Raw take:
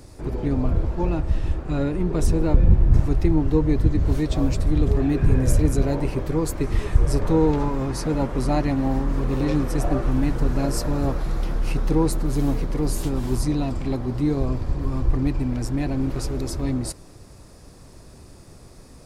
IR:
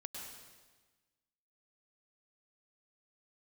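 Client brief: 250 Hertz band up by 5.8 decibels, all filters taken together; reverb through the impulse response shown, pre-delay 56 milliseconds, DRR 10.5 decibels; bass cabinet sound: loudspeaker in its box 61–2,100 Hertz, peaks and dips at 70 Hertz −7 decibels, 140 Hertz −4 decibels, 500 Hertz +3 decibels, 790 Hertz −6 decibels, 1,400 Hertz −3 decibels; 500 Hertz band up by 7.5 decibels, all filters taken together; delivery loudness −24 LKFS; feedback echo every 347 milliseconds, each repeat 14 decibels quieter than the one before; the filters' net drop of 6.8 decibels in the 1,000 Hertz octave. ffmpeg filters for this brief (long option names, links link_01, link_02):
-filter_complex "[0:a]equalizer=frequency=250:width_type=o:gain=5.5,equalizer=frequency=500:width_type=o:gain=7.5,equalizer=frequency=1000:width_type=o:gain=-8.5,aecho=1:1:347|694:0.2|0.0399,asplit=2[link_01][link_02];[1:a]atrim=start_sample=2205,adelay=56[link_03];[link_02][link_03]afir=irnorm=-1:irlink=0,volume=-8dB[link_04];[link_01][link_04]amix=inputs=2:normalize=0,highpass=frequency=61:width=0.5412,highpass=frequency=61:width=1.3066,equalizer=frequency=70:width_type=q:width=4:gain=-7,equalizer=frequency=140:width_type=q:width=4:gain=-4,equalizer=frequency=500:width_type=q:width=4:gain=3,equalizer=frequency=790:width_type=q:width=4:gain=-6,equalizer=frequency=1400:width_type=q:width=4:gain=-3,lowpass=frequency=2100:width=0.5412,lowpass=frequency=2100:width=1.3066,volume=-4.5dB"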